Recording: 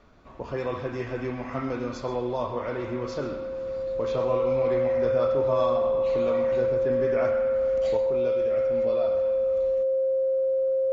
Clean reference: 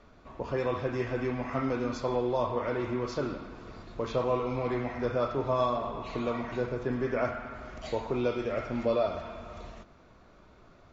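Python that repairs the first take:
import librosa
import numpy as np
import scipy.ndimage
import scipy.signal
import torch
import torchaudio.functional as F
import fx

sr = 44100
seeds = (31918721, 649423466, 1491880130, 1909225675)

y = fx.notch(x, sr, hz=530.0, q=30.0)
y = fx.fix_echo_inverse(y, sr, delay_ms=130, level_db=-15.0)
y = fx.gain(y, sr, db=fx.steps((0.0, 0.0), (7.97, 5.0)))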